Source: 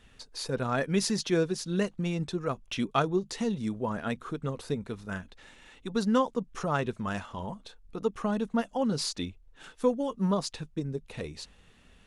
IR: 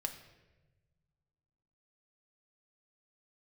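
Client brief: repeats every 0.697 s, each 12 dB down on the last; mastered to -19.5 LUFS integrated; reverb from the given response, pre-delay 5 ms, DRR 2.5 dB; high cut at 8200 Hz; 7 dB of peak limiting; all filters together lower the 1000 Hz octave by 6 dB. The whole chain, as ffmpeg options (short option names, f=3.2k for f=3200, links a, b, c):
-filter_complex "[0:a]lowpass=8.2k,equalizer=f=1k:t=o:g=-8,alimiter=limit=-22dB:level=0:latency=1,aecho=1:1:697|1394|2091:0.251|0.0628|0.0157,asplit=2[a][b];[1:a]atrim=start_sample=2205,adelay=5[c];[b][c]afir=irnorm=-1:irlink=0,volume=-2.5dB[d];[a][d]amix=inputs=2:normalize=0,volume=11.5dB"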